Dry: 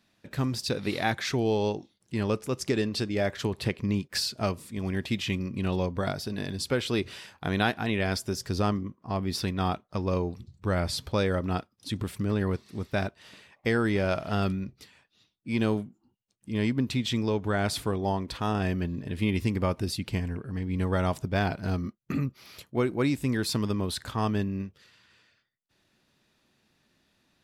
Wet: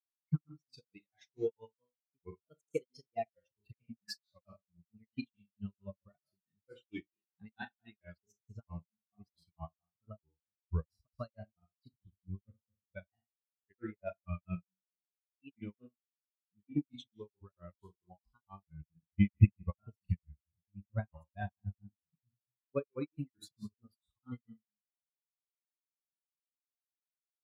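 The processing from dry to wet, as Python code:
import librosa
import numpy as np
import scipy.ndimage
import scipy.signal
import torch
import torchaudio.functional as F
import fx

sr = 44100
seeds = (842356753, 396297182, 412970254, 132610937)

y = fx.bin_expand(x, sr, power=3.0)
y = fx.rev_schroeder(y, sr, rt60_s=0.36, comb_ms=26, drr_db=6.0)
y = fx.granulator(y, sr, seeds[0], grain_ms=195.0, per_s=4.5, spray_ms=84.0, spread_st=3)
y = fx.low_shelf(y, sr, hz=120.0, db=10.5)
y = fx.upward_expand(y, sr, threshold_db=-47.0, expansion=2.5)
y = y * 10.0 ** (7.5 / 20.0)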